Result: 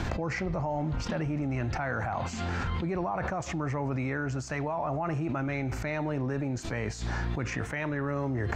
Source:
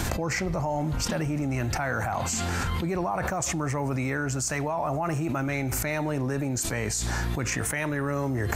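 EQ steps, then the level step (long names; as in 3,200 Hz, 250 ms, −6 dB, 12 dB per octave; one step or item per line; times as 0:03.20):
high-frequency loss of the air 190 metres
high-shelf EQ 11,000 Hz +7.5 dB
−2.5 dB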